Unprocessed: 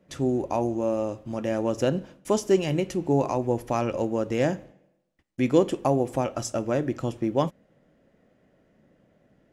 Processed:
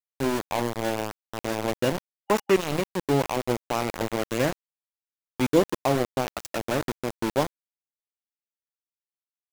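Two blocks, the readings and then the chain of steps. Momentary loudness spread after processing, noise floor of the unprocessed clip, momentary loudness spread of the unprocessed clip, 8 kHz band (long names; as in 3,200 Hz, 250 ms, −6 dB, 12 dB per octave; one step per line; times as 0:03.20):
9 LU, −66 dBFS, 7 LU, +2.0 dB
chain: centre clipping without the shift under −23 dBFS
gain on a spectral selection 0:02.05–0:02.56, 800–2,900 Hz +6 dB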